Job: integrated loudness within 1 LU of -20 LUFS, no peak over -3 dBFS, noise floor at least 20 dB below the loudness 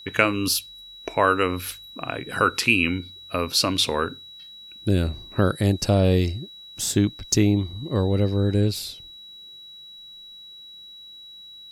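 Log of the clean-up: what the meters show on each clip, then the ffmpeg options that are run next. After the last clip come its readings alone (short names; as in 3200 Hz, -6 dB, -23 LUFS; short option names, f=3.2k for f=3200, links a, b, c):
steady tone 3900 Hz; tone level -41 dBFS; loudness -23.0 LUFS; peak -2.0 dBFS; loudness target -20.0 LUFS
-> -af "bandreject=f=3.9k:w=30"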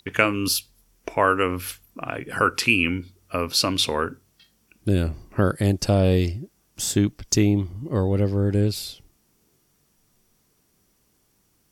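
steady tone none; loudness -23.0 LUFS; peak -2.0 dBFS; loudness target -20.0 LUFS
-> -af "volume=3dB,alimiter=limit=-3dB:level=0:latency=1"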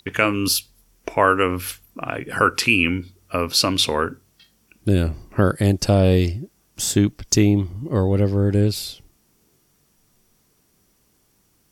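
loudness -20.0 LUFS; peak -3.0 dBFS; noise floor -63 dBFS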